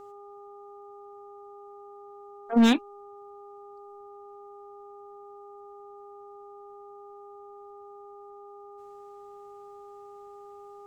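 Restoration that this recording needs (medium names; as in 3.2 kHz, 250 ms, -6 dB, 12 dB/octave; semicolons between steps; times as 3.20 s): clip repair -14.5 dBFS; de-hum 405.8 Hz, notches 3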